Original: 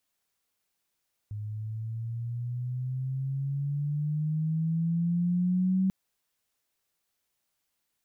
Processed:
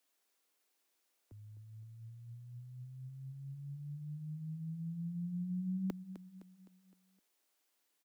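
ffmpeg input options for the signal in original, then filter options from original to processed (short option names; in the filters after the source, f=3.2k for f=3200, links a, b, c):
-f lavfi -i "aevalsrc='pow(10,(-22+11*(t/4.59-1))/20)*sin(2*PI*104*4.59/(10.5*log(2)/12)*(exp(10.5*log(2)/12*t/4.59)-1))':d=4.59:s=44100"
-filter_complex "[0:a]lowshelf=f=200:t=q:w=1.5:g=-14,acrossover=split=110|180|200[a][b][c][d];[b]alimiter=level_in=23.5dB:limit=-24dB:level=0:latency=1,volume=-23.5dB[e];[a][e][c][d]amix=inputs=4:normalize=0,aecho=1:1:257|514|771|1028|1285:0.251|0.121|0.0579|0.0278|0.0133"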